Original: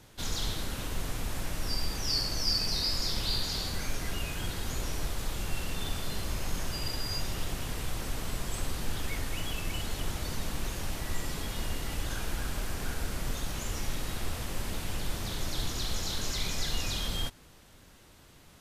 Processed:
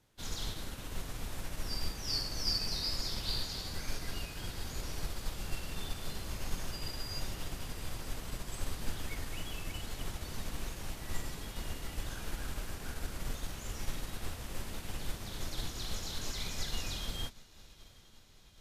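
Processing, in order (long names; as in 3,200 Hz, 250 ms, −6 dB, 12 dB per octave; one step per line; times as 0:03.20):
feedback delay with all-pass diffusion 798 ms, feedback 71%, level −15 dB
expander for the loud parts 1.5 to 1, over −49 dBFS
level −2.5 dB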